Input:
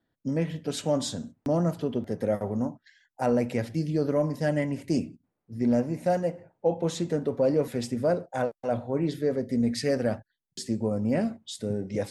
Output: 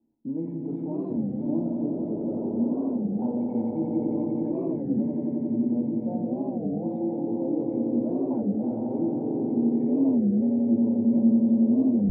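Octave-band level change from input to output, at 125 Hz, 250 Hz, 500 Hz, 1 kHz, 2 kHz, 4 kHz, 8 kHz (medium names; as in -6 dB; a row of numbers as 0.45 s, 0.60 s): -3.5 dB, +6.5 dB, -4.5 dB, -6.5 dB, under -30 dB, under -40 dB, under -40 dB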